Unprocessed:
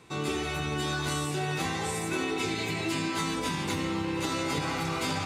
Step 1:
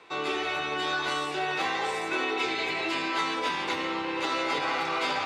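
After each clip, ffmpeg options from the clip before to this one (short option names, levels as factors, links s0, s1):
-filter_complex "[0:a]acrossover=split=370 4700:gain=0.0708 1 0.1[s0][s1][s2];[s0][s1][s2]amix=inputs=3:normalize=0,volume=1.78"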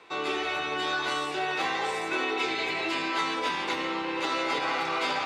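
-af "bandreject=f=50:t=h:w=6,bandreject=f=100:t=h:w=6,bandreject=f=150:t=h:w=6"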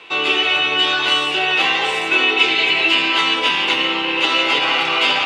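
-af "equalizer=f=2900:t=o:w=0.5:g=15,volume=2.37"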